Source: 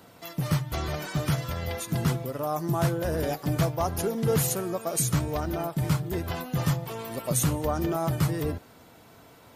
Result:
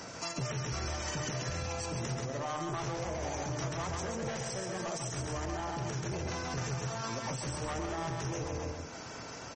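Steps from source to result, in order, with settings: bell 2900 Hz -6.5 dB 0.24 oct; hard clip -27 dBFS, distortion -8 dB; formant shift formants +4 st; loudspeakers at several distances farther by 46 m -4 dB, 92 m -11 dB; limiter -27.5 dBFS, peak gain reduction 10 dB; bell 5800 Hz +13 dB 0.36 oct; notches 50/100/150/200/250/300/350/400/450/500 Hz; compressor 2:1, threshold -48 dBFS, peak gain reduction 9.5 dB; notch 720 Hz, Q 24; gain +8 dB; MP3 32 kbps 44100 Hz

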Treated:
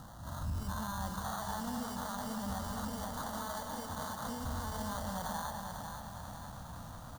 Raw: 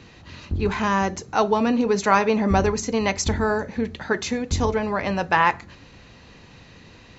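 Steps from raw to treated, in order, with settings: spectral swells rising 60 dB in 0.37 s; 2.96–3.9 HPF 310 Hz 24 dB/oct; compressor, threshold -27 dBFS, peak gain reduction 15 dB; limiter -28 dBFS, peak gain reduction 12 dB; sample-rate reducer 2600 Hz, jitter 0%; fixed phaser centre 960 Hz, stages 4; on a send: echo 0.202 s -6.5 dB; on the sum: lo-fi delay 0.495 s, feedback 55%, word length 10-bit, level -6 dB; gain -1 dB

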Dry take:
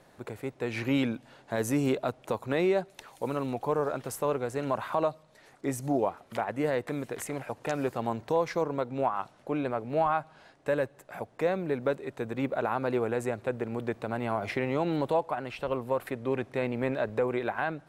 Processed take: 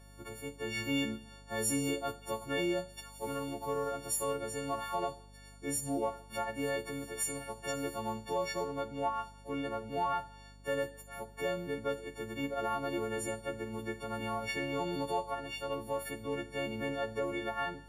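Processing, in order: frequency quantiser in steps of 4 st; Schroeder reverb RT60 0.53 s, combs from 25 ms, DRR 12.5 dB; hum 50 Hz, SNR 19 dB; gain -8 dB

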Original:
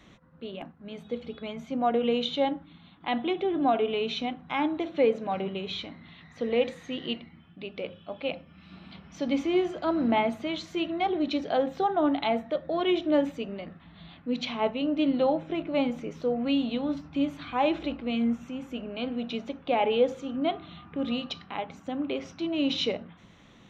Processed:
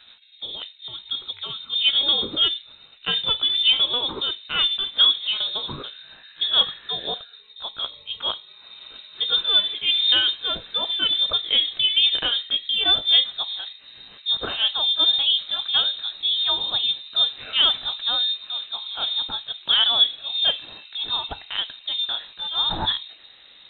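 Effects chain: gliding pitch shift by +3 st ending unshifted; low-pass opened by the level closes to 2500 Hz, open at -24.5 dBFS; inverted band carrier 3900 Hz; gain +6.5 dB

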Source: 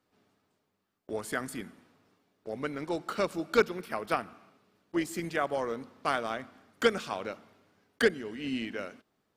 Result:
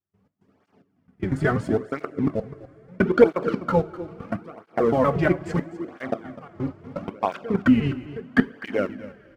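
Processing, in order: slices in reverse order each 0.12 s, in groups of 8; RIAA curve playback; treble ducked by the level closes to 2000 Hz, closed at -21.5 dBFS; bell 3800 Hz -6.5 dB 0.33 oct; in parallel at -2 dB: compressor, threshold -41 dBFS, peak gain reduction 24 dB; on the sum: sample leveller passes 1; step gate ".x.xxx...xxxx" 110 bpm -24 dB; on a send: echo 0.253 s -15.5 dB; on the sum: two-slope reverb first 0.27 s, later 4.4 s, from -21 dB, DRR 10.5 dB; tape flanging out of phase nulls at 0.75 Hz, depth 4.7 ms; gain +7 dB

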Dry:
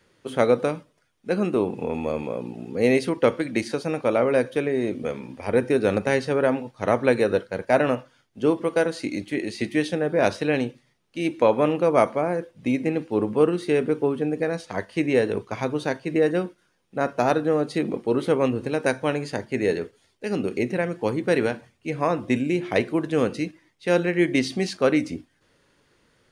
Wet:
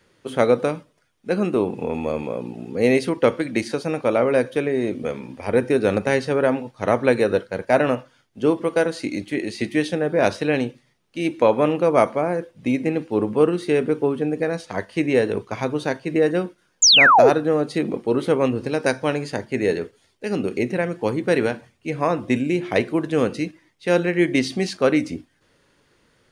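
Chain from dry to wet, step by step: 16.82–17.3 painted sound fall 360–7400 Hz -14 dBFS; 18.57–19.23 bell 5000 Hz +9 dB 0.31 oct; gain +2 dB

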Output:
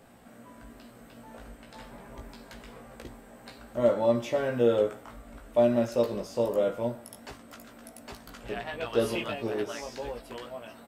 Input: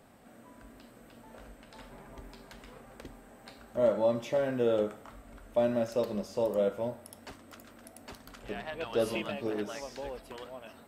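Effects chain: doubler 17 ms -4 dB; gain +2 dB

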